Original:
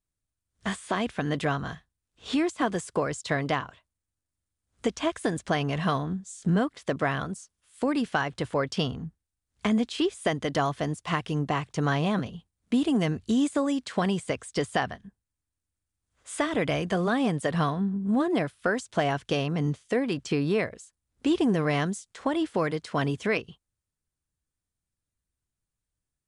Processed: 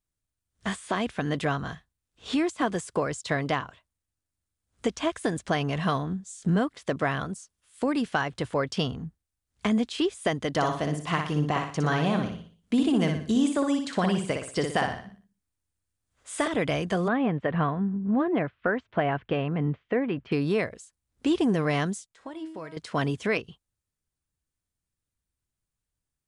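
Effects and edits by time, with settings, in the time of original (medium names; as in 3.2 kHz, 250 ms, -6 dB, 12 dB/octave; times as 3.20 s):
10.53–16.48 s: feedback delay 60 ms, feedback 40%, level -5.5 dB
17.08–20.32 s: low-pass 2.6 kHz 24 dB/octave
22.06–22.77 s: feedback comb 320 Hz, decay 0.79 s, mix 80%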